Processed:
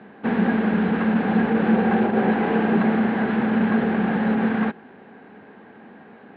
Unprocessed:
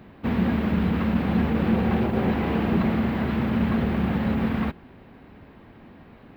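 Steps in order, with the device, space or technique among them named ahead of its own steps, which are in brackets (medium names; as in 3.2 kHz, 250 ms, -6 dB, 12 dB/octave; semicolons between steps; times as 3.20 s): kitchen radio (cabinet simulation 210–3900 Hz, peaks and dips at 210 Hz +8 dB, 440 Hz +8 dB, 790 Hz +8 dB, 1.6 kHz +10 dB)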